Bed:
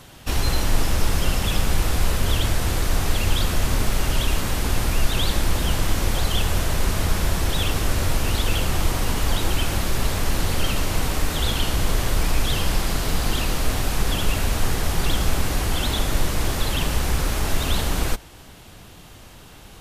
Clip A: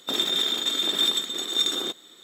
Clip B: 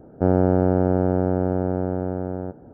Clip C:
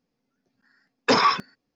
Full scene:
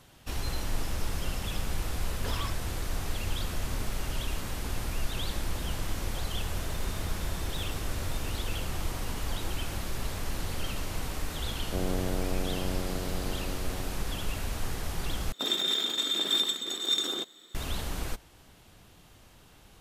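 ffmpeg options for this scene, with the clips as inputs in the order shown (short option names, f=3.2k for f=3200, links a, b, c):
-filter_complex "[1:a]asplit=2[a][b];[0:a]volume=-11.5dB[c];[3:a]asoftclip=type=hard:threshold=-19dB[d];[a]equalizer=f=2.9k:w=0.32:g=-14.5[e];[c]asplit=2[f][g];[f]atrim=end=15.324[h];[b]atrim=end=2.23,asetpts=PTS-STARTPTS,volume=-4dB[i];[g]atrim=start=17.546[j];[d]atrim=end=1.75,asetpts=PTS-STARTPTS,volume=-17.5dB,afade=t=in:d=0.004:c=hsin,afade=t=out:st=1.746:d=0.004:c=hsin,adelay=1160[k];[e]atrim=end=2.23,asetpts=PTS-STARTPTS,volume=-15dB,afade=t=in:d=0.004:c=hsin,afade=t=out:st=2.226:d=0.004:c=hsin,adelay=6550[l];[2:a]atrim=end=2.73,asetpts=PTS-STARTPTS,volume=-15dB,afade=t=in:d=0.004:c=hsin,afade=t=out:st=2.726:d=0.004:c=hsin,adelay=11510[m];[h][i]acrossfade=d=0.004:c1=hsin:c2=hsin[n];[n][j]acrossfade=d=0.004:c1=hsin:c2=hsin[o];[o][k][l][m]amix=inputs=4:normalize=0"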